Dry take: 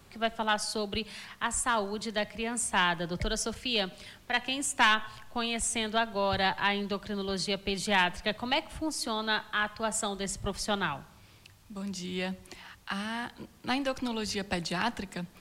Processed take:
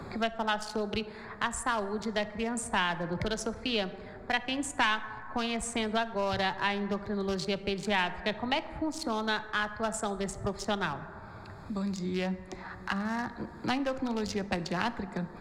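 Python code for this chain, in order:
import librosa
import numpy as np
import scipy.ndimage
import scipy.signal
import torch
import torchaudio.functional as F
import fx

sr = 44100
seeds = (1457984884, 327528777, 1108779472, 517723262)

y = fx.wiener(x, sr, points=15)
y = fx.high_shelf(y, sr, hz=10000.0, db=-9.5)
y = fx.rev_plate(y, sr, seeds[0], rt60_s=1.6, hf_ratio=0.35, predelay_ms=0, drr_db=13.0)
y = fx.band_squash(y, sr, depth_pct=70)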